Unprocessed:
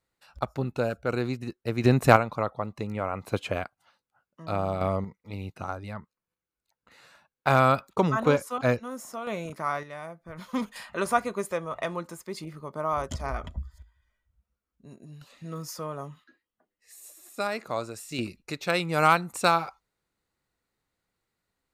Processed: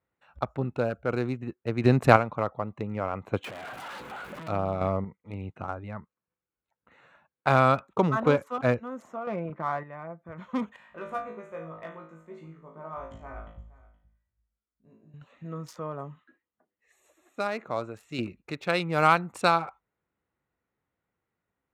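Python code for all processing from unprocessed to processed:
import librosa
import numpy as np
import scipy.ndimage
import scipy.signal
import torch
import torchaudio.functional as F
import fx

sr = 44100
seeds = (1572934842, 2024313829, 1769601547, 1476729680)

y = fx.chain(x, sr, fx.clip_1bit(),
    fx.peak_eq(hz=74.0, db=-13.5, octaves=1.9),
    fx.band_squash(depth_pct=100), at=(3.44, 4.48))
y = fx.chain(y, sr, fx.lowpass(hz=2000.0, slope=12),
    fx.comb(ms=5.8, depth=0.39), at=(9.16, 10.22))
y = fx.chain(y, sr, fx.comb_fb(f0_hz=54.0, decay_s=0.44, harmonics='all', damping=0.0, mix_pct=100),
    fx.echo_single(ms=471, db=-20.0), at=(10.76, 15.14))
y = fx.wiener(y, sr, points=9)
y = scipy.signal.sosfilt(scipy.signal.butter(2, 58.0, 'highpass', fs=sr, output='sos'), y)
y = fx.high_shelf(y, sr, hz=8800.0, db=-11.5)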